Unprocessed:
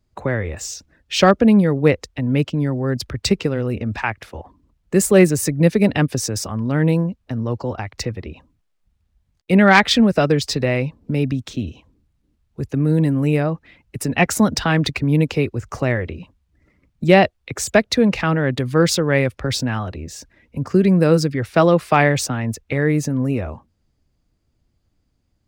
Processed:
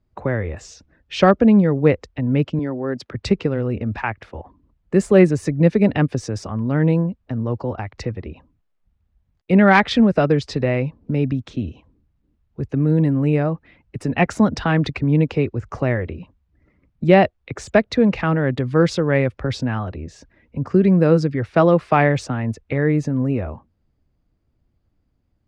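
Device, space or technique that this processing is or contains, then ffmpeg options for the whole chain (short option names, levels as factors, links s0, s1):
through cloth: -filter_complex "[0:a]asettb=1/sr,asplit=3[s0][s1][s2];[s0]atrim=end=2.594[s3];[s1]atrim=start=2.59:end=3.15,asetpts=PTS-STARTPTS,afade=t=in:d=0.004:c=qsin,afade=t=out:st=0.556:d=0.004:c=qsin,highpass=240[s4];[s2]atrim=start=3.146[s5];[s3][s4]acrossfade=d=0.004:c1=hsin:c2=qsin[s6];[s6][s5]acrossfade=d=0.004:c1=qsin:c2=hsin,lowpass=7600,highshelf=f=3700:g=-14.5"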